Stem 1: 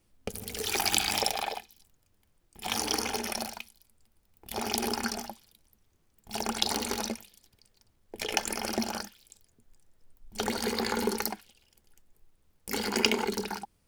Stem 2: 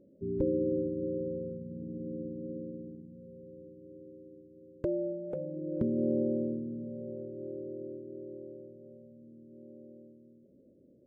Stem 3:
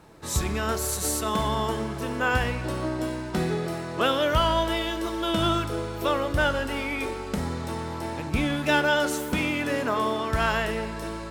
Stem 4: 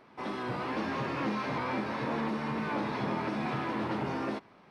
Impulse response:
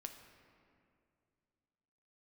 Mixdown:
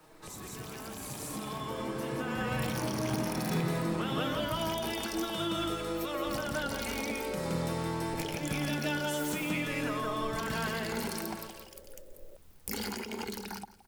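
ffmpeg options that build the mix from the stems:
-filter_complex "[0:a]volume=0.5dB,asplit=2[a][b];[b]volume=-23.5dB[c];[1:a]acompressor=mode=upward:threshold=-40dB:ratio=2.5,highpass=f=550:w=0.5412,highpass=f=550:w=1.3066,adelay=1300,volume=-3dB[d];[2:a]highpass=f=330:p=1,aecho=1:1:6.4:0.53,volume=-5dB,asplit=2[e][f];[f]volume=-6.5dB[g];[3:a]adelay=100,volume=-8dB[h];[a][e]amix=inputs=2:normalize=0,acrossover=split=380|1200[i][j][k];[i]acompressor=threshold=-40dB:ratio=4[l];[j]acompressor=threshold=-38dB:ratio=4[m];[k]acompressor=threshold=-33dB:ratio=4[n];[l][m][n]amix=inputs=3:normalize=0,alimiter=level_in=4.5dB:limit=-24dB:level=0:latency=1:release=152,volume=-4.5dB,volume=0dB[o];[c][g]amix=inputs=2:normalize=0,aecho=0:1:170|340|510|680:1|0.27|0.0729|0.0197[p];[d][h][o][p]amix=inputs=4:normalize=0,acrossover=split=210[q][r];[r]acompressor=threshold=-51dB:ratio=2[s];[q][s]amix=inputs=2:normalize=0,highshelf=f=12k:g=7.5,dynaudnorm=f=530:g=7:m=10dB"

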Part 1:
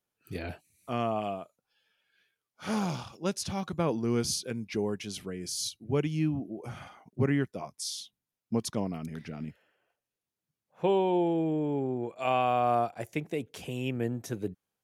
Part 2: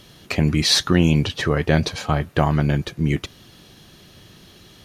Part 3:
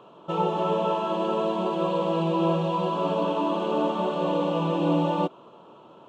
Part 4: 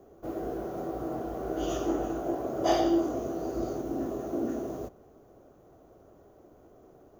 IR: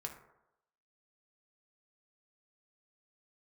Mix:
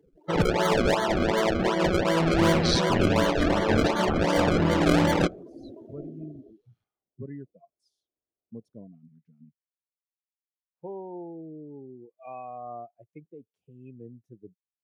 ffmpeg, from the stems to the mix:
-filter_complex "[0:a]volume=-12dB[a];[1:a]aeval=exprs='val(0)*sin(2*PI*60*n/s)':c=same,adelay=2000,volume=-7.5dB[b];[2:a]acrusher=samples=33:mix=1:aa=0.000001:lfo=1:lforange=33:lforate=2.7,volume=2dB[c];[3:a]adelay=1650,volume=-11dB[d];[a][b][c][d]amix=inputs=4:normalize=0,afftdn=nr=32:nf=-36"

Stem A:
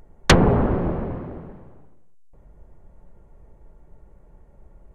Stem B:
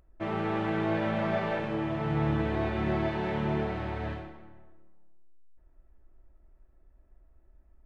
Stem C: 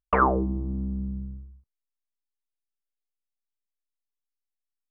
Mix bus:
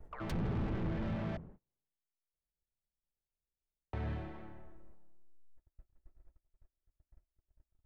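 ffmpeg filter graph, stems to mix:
-filter_complex "[0:a]alimiter=limit=-13dB:level=0:latency=1:release=142,volume=-4dB,afade=t=out:st=1.29:d=0.22:silence=0.281838[a];[1:a]volume=1dB,asplit=3[b][c][d];[b]atrim=end=1.37,asetpts=PTS-STARTPTS,afade=t=out:st=1.366:d=0.004:c=hsin[e];[c]atrim=start=1.37:end=3.93,asetpts=PTS-STARTPTS,volume=0[f];[d]atrim=start=3.93,asetpts=PTS-STARTPTS,afade=t=in:d=0.004:c=hsin[g];[e][f][g]concat=n=3:v=0:a=1[h];[2:a]highpass=660,volume=-19dB[i];[a][h][i]amix=inputs=3:normalize=0,asoftclip=type=tanh:threshold=-29dB,agate=range=-33dB:threshold=-51dB:ratio=16:detection=peak,acrossover=split=230[j][k];[k]acompressor=threshold=-46dB:ratio=3[l];[j][l]amix=inputs=2:normalize=0"

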